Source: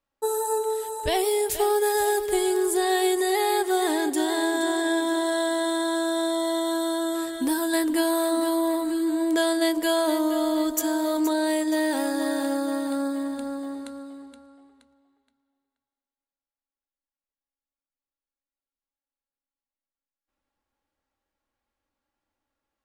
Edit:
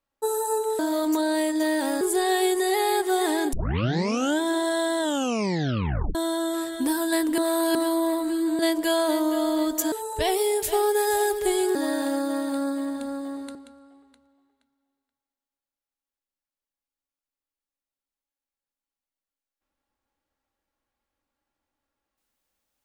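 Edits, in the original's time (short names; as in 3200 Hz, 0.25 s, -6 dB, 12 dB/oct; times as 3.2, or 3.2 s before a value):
0.79–2.62 swap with 10.91–12.13
4.14 tape start 0.88 s
5.6 tape stop 1.16 s
7.99–8.36 reverse
9.2–9.58 cut
13.93–14.22 cut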